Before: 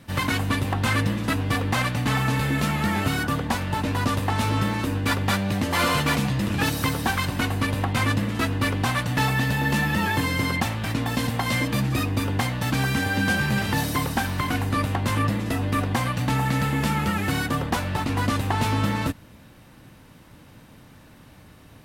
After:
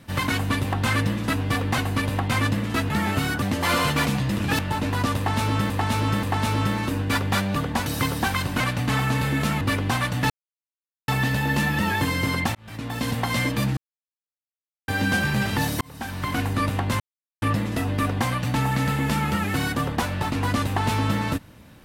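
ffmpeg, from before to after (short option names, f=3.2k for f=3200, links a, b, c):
-filter_complex "[0:a]asplit=17[a][b][c][d][e][f][g][h][i][j][k][l][m][n][o][p][q];[a]atrim=end=1.782[r];[b]atrim=start=7.428:end=8.552[s];[c]atrim=start=2.788:end=3.312[t];[d]atrim=start=5.518:end=6.692[u];[e]atrim=start=3.608:end=4.722[v];[f]atrim=start=4.188:end=4.722[w];[g]atrim=start=4.188:end=5.522[x];[h]atrim=start=3.308:end=3.612[y];[i]atrim=start=6.688:end=7.432[z];[j]atrim=start=1.778:end=2.792[aa];[k]atrim=start=8.548:end=9.24,asetpts=PTS-STARTPTS,afade=t=out:st=0.688:d=0.004:c=hsin,apad=pad_dur=0.78[ab];[l]atrim=start=9.24:end=10.71,asetpts=PTS-STARTPTS,afade=t=in:d=0.004:c=hsin,afade=t=out:st=1.466:d=0.004:c=hsin[ac];[m]atrim=start=10.71:end=11.93,asetpts=PTS-STARTPTS,afade=t=in:d=0.59,afade=t=out:st=1.216:d=0.004:c=hsin[ad];[n]atrim=start=11.93:end=13.04,asetpts=PTS-STARTPTS,volume=0[ae];[o]atrim=start=13.04:end=13.97,asetpts=PTS-STARTPTS,afade=t=in:d=0.004:c=hsin,afade=t=out:st=0.926:d=0.004:c=hsin[af];[p]atrim=start=13.97:end=15.16,asetpts=PTS-STARTPTS,afade=t=in:d=0.57,afade=t=out:st=1.186:d=0.004:c=hsin,apad=pad_dur=0.42[ag];[q]atrim=start=15.16,asetpts=PTS-STARTPTS,afade=t=in:d=0.004:c=hsin[ah];[r][s]acrossfade=d=0.004:c1=hsin:c2=hsin[ai];[ai][t]acrossfade=d=0.004:c1=hsin:c2=hsin[aj];[aj][u]acrossfade=d=0.004:c1=hsin:c2=hsin[ak];[ak][v]acrossfade=d=0.004:c1=hsin:c2=hsin[al];[al][w]acrossfade=d=0.004:c1=hsin:c2=hsin[am];[am][x]acrossfade=d=0.004:c1=hsin:c2=hsin[an];[an][y]acrossfade=d=0.004:c1=hsin:c2=hsin[ao];[ao][z]acrossfade=d=0.004:c1=hsin:c2=hsin[ap];[ap][aa]acrossfade=d=0.004:c1=hsin:c2=hsin[aq];[ab][ac][ad][ae][af][ag][ah]concat=n=7:v=0:a=1[ar];[aq][ar]acrossfade=d=0.004:c1=hsin:c2=hsin"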